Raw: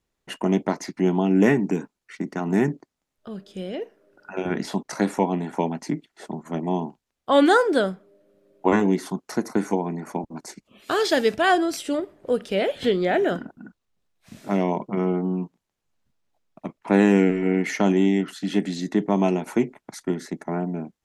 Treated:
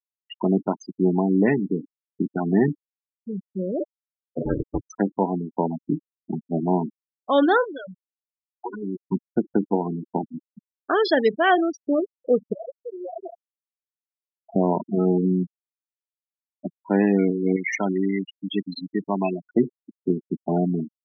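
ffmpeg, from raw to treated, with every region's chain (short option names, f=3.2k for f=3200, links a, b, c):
-filter_complex "[0:a]asettb=1/sr,asplit=3[a][b][c];[a]atrim=end=3.804[d];[b]atrim=start=3.8:end=4.83,asetpts=PTS-STARTPTS,afade=t=in:d=0.004:c=qsin,afade=t=out:st=1.026:d=0.004:c=qsin,aeval=exprs='val(0)*sin(2*PI*130*n/s)':c=same,aecho=1:1:6.9:0.41,atrim=end_sample=45423[e];[c]atrim=start=4.826[f];[d][e]acrossfade=d=0.004:c1=hsin:c2=qsin[g];[g][f]acrossfade=d=0.004:c1=qsin:c2=hsin,asettb=1/sr,asplit=3[h][i][j];[h]atrim=end=7.644[k];[i]atrim=start=7.64:end=9.06,asetpts=PTS-STARTPTS,afade=t=in:d=0.004:c=qsin,afade=t=out:st=1.416:d=0.004:c=qsin,equalizer=f=3.5k:t=o:w=2.8:g=14.5,acompressor=threshold=-35dB:ratio=3:attack=3.2:release=140:knee=1:detection=peak[l];[j]atrim=start=9.056[m];[k][l]acrossfade=d=0.004:c1=hsin:c2=qsin[n];[n][m]acrossfade=d=0.004:c1=qsin:c2=hsin,asettb=1/sr,asplit=3[o][p][q];[o]atrim=end=12.534[r];[p]atrim=start=12.53:end=14.56,asetpts=PTS-STARTPTS,afade=t=in:d=0.004:c=qsin,afade=t=out:st=2.026:d=0.004:c=qsin,acrossover=split=600 2700:gain=0.2 1 0.141[s][t][u];[s][t][u]amix=inputs=3:normalize=0,aecho=1:1:5.9:0.77,atrim=end_sample=89523,acompressor=threshold=-37dB:ratio=3:attack=3.2:release=140:knee=1:detection=peak[v];[q]atrim=start=14.556[w];[r][v]acrossfade=d=0.004:c1=hsin:c2=qsin[x];[x][w]acrossfade=d=0.004:c1=qsin:c2=hsin,asettb=1/sr,asplit=3[y][z][aa];[y]atrim=end=17.564[ab];[z]atrim=start=17.56:end=19.49,asetpts=PTS-STARTPTS,afade=t=in:d=0.004:c=qsin,afade=t=out:st=1.926:d=0.004:c=qsin,lowpass=f=3.4k:p=1,tiltshelf=f=1.4k:g=-9.5[ac];[aa]atrim=start=19.486[ad];[ab][ac]acrossfade=d=0.004:c1=hsin:c2=qsin[ae];[ae][ad]acrossfade=d=0.004:c1=qsin:c2=hsin,afftfilt=real='re*gte(hypot(re,im),0.1)':imag='im*gte(hypot(re,im),0.1)':win_size=1024:overlap=0.75,dynaudnorm=f=110:g=5:m=12dB,volume=-6.5dB"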